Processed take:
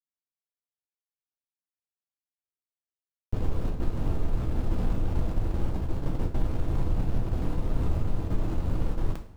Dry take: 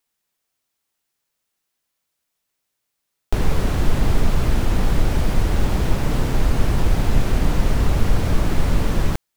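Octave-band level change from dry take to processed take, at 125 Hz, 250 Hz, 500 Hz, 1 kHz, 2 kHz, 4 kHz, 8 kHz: −8.5 dB, −9.0 dB, −10.5 dB, −12.5 dB, −18.0 dB, −18.5 dB, below −20 dB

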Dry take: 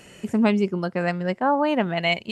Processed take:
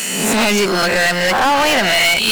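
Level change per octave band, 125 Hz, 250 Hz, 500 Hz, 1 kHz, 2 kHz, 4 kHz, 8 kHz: +2.0 dB, +2.0 dB, +7.0 dB, +9.0 dB, +14.5 dB, +17.0 dB, can't be measured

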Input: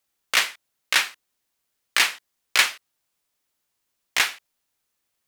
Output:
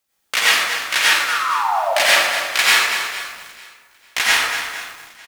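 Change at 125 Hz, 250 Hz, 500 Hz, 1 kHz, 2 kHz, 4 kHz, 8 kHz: can't be measured, +9.0 dB, +17.5 dB, +13.5 dB, +8.5 dB, +7.5 dB, +7.0 dB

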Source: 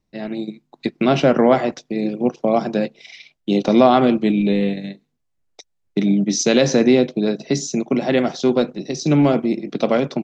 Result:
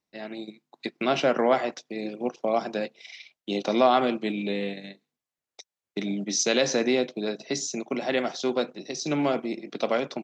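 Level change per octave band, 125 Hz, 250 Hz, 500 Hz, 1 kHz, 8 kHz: −16.0 dB, −12.0 dB, −8.0 dB, −5.5 dB, can't be measured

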